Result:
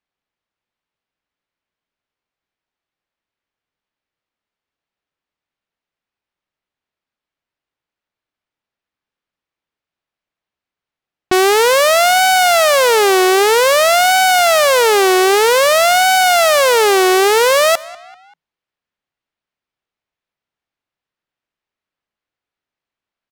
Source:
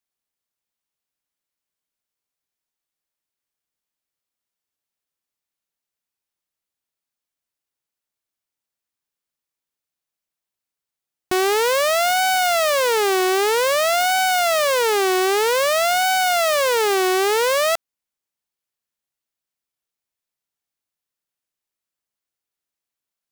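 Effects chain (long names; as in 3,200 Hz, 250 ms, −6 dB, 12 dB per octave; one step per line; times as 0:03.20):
echo with shifted repeats 194 ms, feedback 48%, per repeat +52 Hz, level −21 dB
low-pass that shuts in the quiet parts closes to 3,000 Hz, open at −18 dBFS
level +7 dB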